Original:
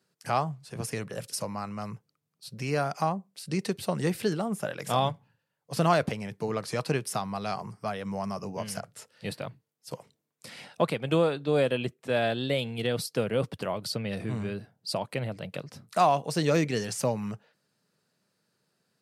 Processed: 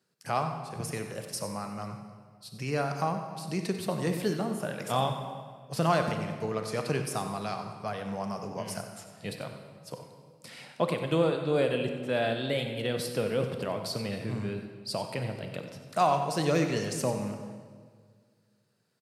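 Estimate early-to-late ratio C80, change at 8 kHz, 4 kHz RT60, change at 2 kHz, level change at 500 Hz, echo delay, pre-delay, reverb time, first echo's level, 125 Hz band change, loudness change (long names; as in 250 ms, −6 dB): 7.0 dB, −1.5 dB, 1.4 s, −1.5 dB, −1.0 dB, 93 ms, 26 ms, 1.8 s, −12.5 dB, −1.0 dB, −1.5 dB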